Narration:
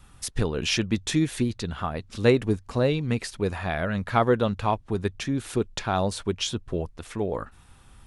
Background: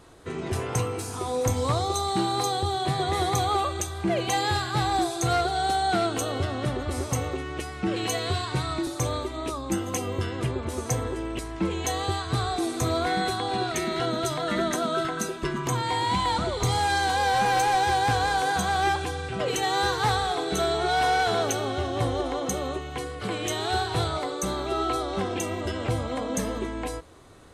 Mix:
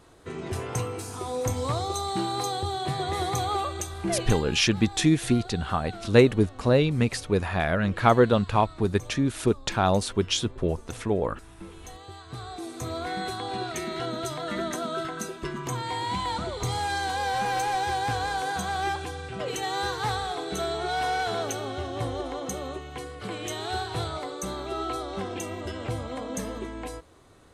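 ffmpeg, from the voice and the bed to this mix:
-filter_complex "[0:a]adelay=3900,volume=1.33[s0];[1:a]volume=2.99,afade=t=out:st=4.2:d=0.25:silence=0.199526,afade=t=in:st=12.06:d=1.38:silence=0.237137[s1];[s0][s1]amix=inputs=2:normalize=0"

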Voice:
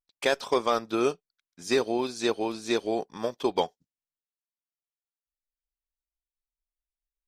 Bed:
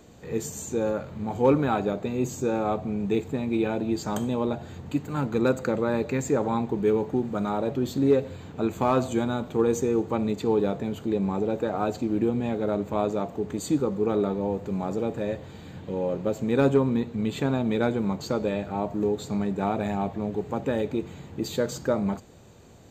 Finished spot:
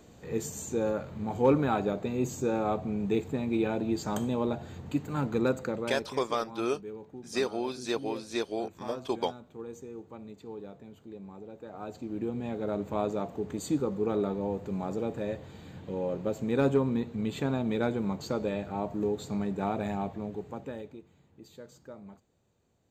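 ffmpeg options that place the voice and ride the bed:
-filter_complex "[0:a]adelay=5650,volume=0.562[s0];[1:a]volume=3.76,afade=t=out:st=5.31:d=0.93:silence=0.158489,afade=t=in:st=11.59:d=1.32:silence=0.188365,afade=t=out:st=19.91:d=1.12:silence=0.141254[s1];[s0][s1]amix=inputs=2:normalize=0"

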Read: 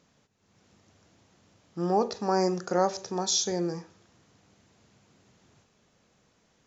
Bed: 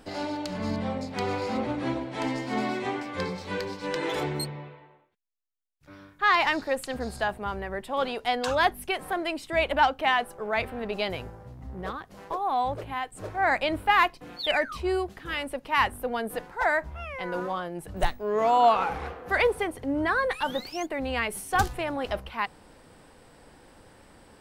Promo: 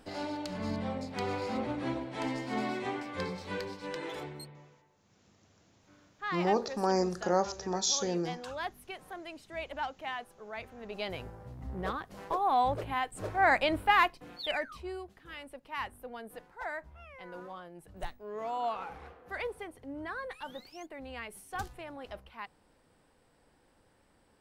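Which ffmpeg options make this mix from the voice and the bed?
-filter_complex "[0:a]adelay=4550,volume=0.708[s0];[1:a]volume=2.82,afade=t=out:st=3.52:d=0.86:silence=0.334965,afade=t=in:st=10.76:d=0.93:silence=0.199526,afade=t=out:st=13.41:d=1.53:silence=0.211349[s1];[s0][s1]amix=inputs=2:normalize=0"

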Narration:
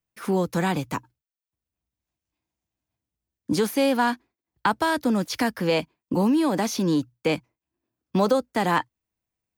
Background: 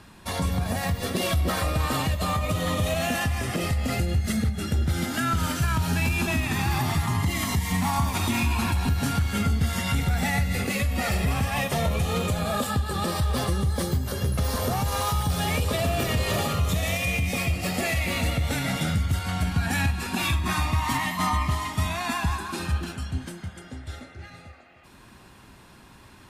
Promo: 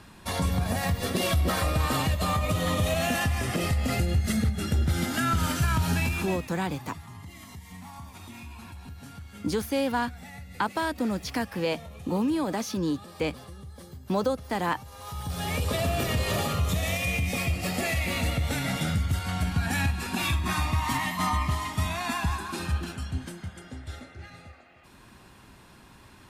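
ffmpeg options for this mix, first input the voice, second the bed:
-filter_complex "[0:a]adelay=5950,volume=0.531[s0];[1:a]volume=6.68,afade=t=out:st=5.91:d=0.58:silence=0.11885,afade=t=in:st=14.98:d=0.73:silence=0.141254[s1];[s0][s1]amix=inputs=2:normalize=0"

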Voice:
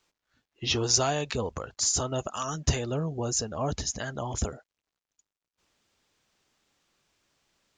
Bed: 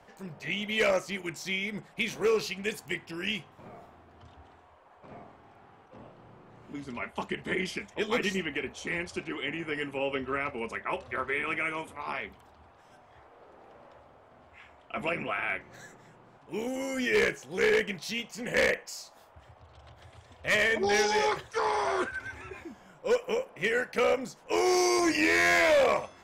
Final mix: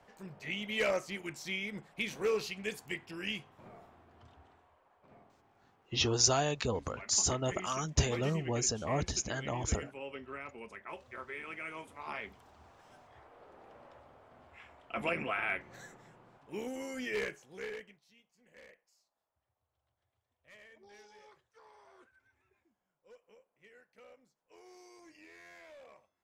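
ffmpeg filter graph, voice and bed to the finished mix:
-filter_complex "[0:a]adelay=5300,volume=0.708[s0];[1:a]volume=1.68,afade=t=out:st=4.22:d=0.83:silence=0.446684,afade=t=in:st=11.56:d=1.14:silence=0.316228,afade=t=out:st=15.85:d=2.16:silence=0.0334965[s1];[s0][s1]amix=inputs=2:normalize=0"

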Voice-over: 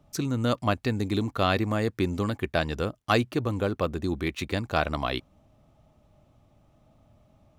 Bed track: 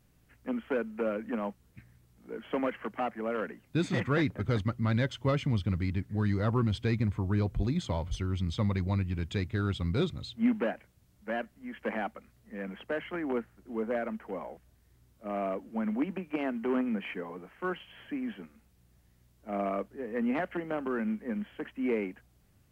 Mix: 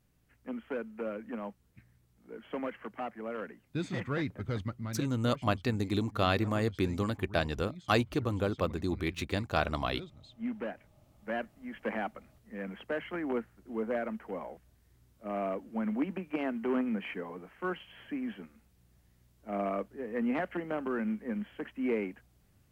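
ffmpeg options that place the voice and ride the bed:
-filter_complex "[0:a]adelay=4800,volume=0.631[s0];[1:a]volume=3.16,afade=t=out:st=4.65:d=0.43:silence=0.281838,afade=t=in:st=10.17:d=1.19:silence=0.16788[s1];[s0][s1]amix=inputs=2:normalize=0"

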